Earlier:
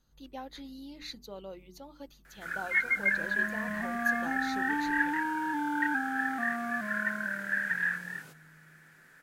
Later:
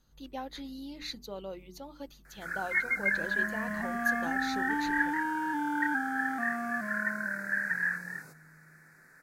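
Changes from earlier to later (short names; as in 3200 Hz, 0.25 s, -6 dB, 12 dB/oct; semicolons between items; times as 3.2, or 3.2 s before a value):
speech +3.0 dB; first sound: add Butterworth band-stop 3100 Hz, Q 1.5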